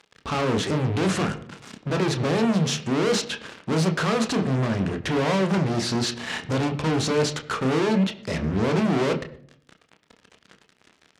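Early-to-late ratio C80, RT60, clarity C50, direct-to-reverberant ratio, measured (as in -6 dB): 16.0 dB, 0.60 s, 14.0 dB, 5.0 dB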